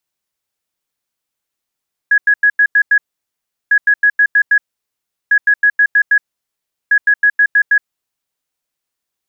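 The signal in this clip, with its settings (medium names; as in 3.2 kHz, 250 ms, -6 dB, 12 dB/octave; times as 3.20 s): beep pattern sine 1.67 kHz, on 0.07 s, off 0.09 s, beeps 6, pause 0.73 s, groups 4, -6.5 dBFS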